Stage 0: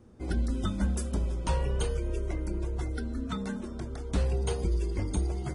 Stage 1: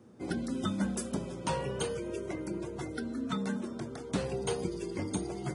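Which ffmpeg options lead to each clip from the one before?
ffmpeg -i in.wav -af "highpass=frequency=120:width=0.5412,highpass=frequency=120:width=1.3066,volume=1dB" out.wav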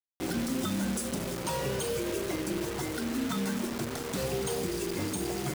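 ffmpeg -i in.wav -af "bass=frequency=250:gain=-1,treble=frequency=4000:gain=5,alimiter=level_in=4dB:limit=-24dB:level=0:latency=1:release=67,volume=-4dB,acrusher=bits=6:mix=0:aa=0.000001,volume=5dB" out.wav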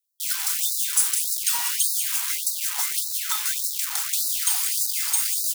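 ffmpeg -i in.wav -af "crystalizer=i=3:c=0,aecho=1:1:191:0.398,afftfilt=real='re*gte(b*sr/1024,730*pow(3800/730,0.5+0.5*sin(2*PI*1.7*pts/sr)))':imag='im*gte(b*sr/1024,730*pow(3800/730,0.5+0.5*sin(2*PI*1.7*pts/sr)))':win_size=1024:overlap=0.75,volume=4dB" out.wav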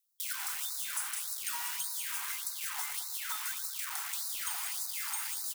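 ffmpeg -i in.wav -filter_complex "[0:a]acrossover=split=1100|2500[link_01][link_02][link_03];[link_01]acompressor=threshold=-51dB:ratio=4[link_04];[link_02]acompressor=threshold=-42dB:ratio=4[link_05];[link_03]acompressor=threshold=-36dB:ratio=4[link_06];[link_04][link_05][link_06]amix=inputs=3:normalize=0,acrossover=split=1500|7500[link_07][link_08][link_09];[link_07]aecho=1:1:111|222|333|444|555|666|777:0.447|0.259|0.15|0.0872|0.0505|0.0293|0.017[link_10];[link_08]asoftclip=type=tanh:threshold=-38.5dB[link_11];[link_10][link_11][link_09]amix=inputs=3:normalize=0" out.wav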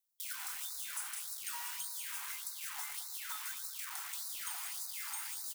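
ffmpeg -i in.wav -filter_complex "[0:a]asplit=2[link_01][link_02];[link_02]adelay=22,volume=-11.5dB[link_03];[link_01][link_03]amix=inputs=2:normalize=0,volume=-5.5dB" out.wav

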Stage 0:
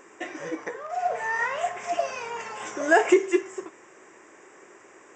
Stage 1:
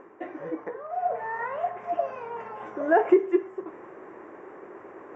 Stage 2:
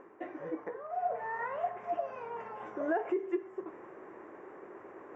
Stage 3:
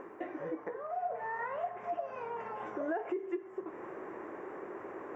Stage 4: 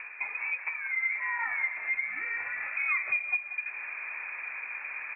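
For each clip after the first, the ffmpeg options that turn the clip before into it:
ffmpeg -i in.wav -af "lowpass=1100,areverse,acompressor=mode=upward:threshold=-34dB:ratio=2.5,areverse" out.wav
ffmpeg -i in.wav -af "alimiter=limit=-18dB:level=0:latency=1:release=204,volume=-5dB" out.wav
ffmpeg -i in.wav -af "acompressor=threshold=-48dB:ratio=2,volume=7dB" out.wav
ffmpeg -i in.wav -af "aecho=1:1:187|374|561|748:0.251|0.105|0.0443|0.0186,lowpass=frequency=2400:width_type=q:width=0.5098,lowpass=frequency=2400:width_type=q:width=0.6013,lowpass=frequency=2400:width_type=q:width=0.9,lowpass=frequency=2400:width_type=q:width=2.563,afreqshift=-2800,volume=5.5dB" out.wav

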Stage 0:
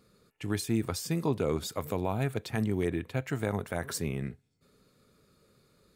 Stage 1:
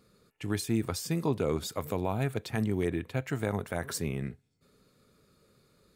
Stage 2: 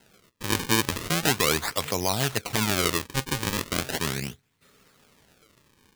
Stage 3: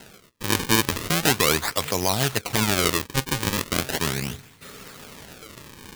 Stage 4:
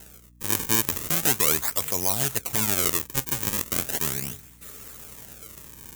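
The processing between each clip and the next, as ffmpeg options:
ffmpeg -i in.wav -af anull out.wav
ffmpeg -i in.wav -af "acrusher=samples=37:mix=1:aa=0.000001:lfo=1:lforange=59.2:lforate=0.38,tiltshelf=frequency=1200:gain=-7,volume=8dB" out.wav
ffmpeg -i in.wav -af "areverse,acompressor=mode=upward:threshold=-30dB:ratio=2.5,areverse,acrusher=bits=2:mode=log:mix=0:aa=0.000001,volume=2.5dB" out.wav
ffmpeg -i in.wav -filter_complex "[0:a]aeval=exprs='val(0)+0.00501*(sin(2*PI*60*n/s)+sin(2*PI*2*60*n/s)/2+sin(2*PI*3*60*n/s)/3+sin(2*PI*4*60*n/s)/4+sin(2*PI*5*60*n/s)/5)':channel_layout=same,acrossover=split=1300[link_01][link_02];[link_02]aexciter=amount=3.2:drive=5.9:freq=6200[link_03];[link_01][link_03]amix=inputs=2:normalize=0,volume=-7dB" out.wav

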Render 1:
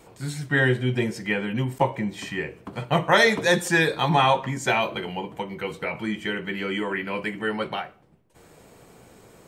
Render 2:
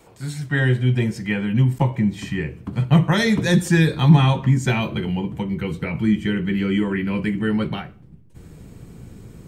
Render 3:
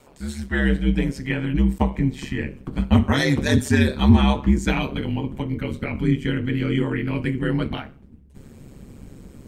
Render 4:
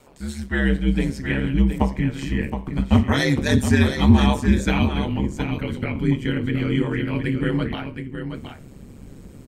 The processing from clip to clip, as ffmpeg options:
ffmpeg -i in.wav -filter_complex "[0:a]asubboost=boost=8.5:cutoff=220,acrossover=split=390|3000[link_01][link_02][link_03];[link_02]acompressor=threshold=-21dB:ratio=6[link_04];[link_01][link_04][link_03]amix=inputs=3:normalize=0" out.wav
ffmpeg -i in.wav -af "aeval=exprs='val(0)*sin(2*PI*69*n/s)':channel_layout=same,volume=1.5dB" out.wav
ffmpeg -i in.wav -af "aecho=1:1:719:0.398" out.wav

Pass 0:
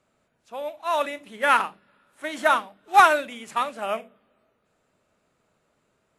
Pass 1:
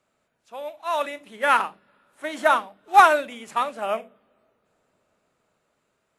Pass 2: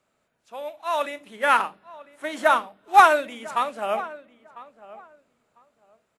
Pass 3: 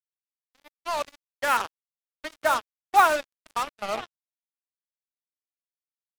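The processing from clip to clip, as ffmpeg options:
ffmpeg -i in.wav -filter_complex "[0:a]lowshelf=frequency=350:gain=-5.5,acrossover=split=1100[link_01][link_02];[link_01]dynaudnorm=framelen=300:gausssize=9:maxgain=5.5dB[link_03];[link_03][link_02]amix=inputs=2:normalize=0,volume=-1dB" out.wav
ffmpeg -i in.wav -filter_complex "[0:a]asplit=2[link_01][link_02];[link_02]adelay=999,lowpass=frequency=1800:poles=1,volume=-17.5dB,asplit=2[link_03][link_04];[link_04]adelay=999,lowpass=frequency=1800:poles=1,volume=0.19[link_05];[link_01][link_03][link_05]amix=inputs=3:normalize=0" out.wav
ffmpeg -i in.wav -af "acrusher=bits=3:mix=0:aa=0.5,volume=-4.5dB" out.wav

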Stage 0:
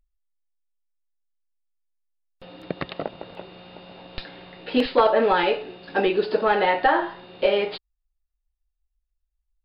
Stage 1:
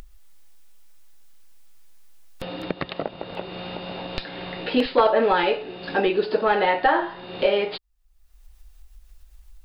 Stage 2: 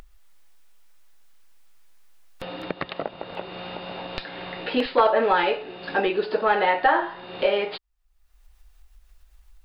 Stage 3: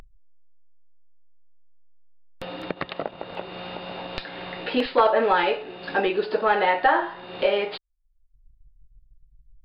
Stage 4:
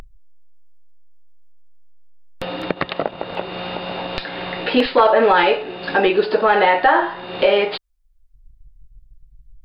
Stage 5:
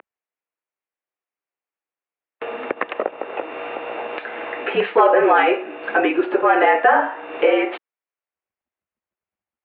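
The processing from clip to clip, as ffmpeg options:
ffmpeg -i in.wav -af "acompressor=mode=upward:threshold=-22dB:ratio=2.5" out.wav
ffmpeg -i in.wav -af "equalizer=frequency=1300:width=0.41:gain=6,volume=-5dB" out.wav
ffmpeg -i in.wav -af "anlmdn=0.0251" out.wav
ffmpeg -i in.wav -af "alimiter=level_in=11.5dB:limit=-1dB:release=50:level=0:latency=1,volume=-3.5dB" out.wav
ffmpeg -i in.wav -af "highpass=frequency=400:width_type=q:width=0.5412,highpass=frequency=400:width_type=q:width=1.307,lowpass=frequency=2700:width_type=q:width=0.5176,lowpass=frequency=2700:width_type=q:width=0.7071,lowpass=frequency=2700:width_type=q:width=1.932,afreqshift=-62" out.wav

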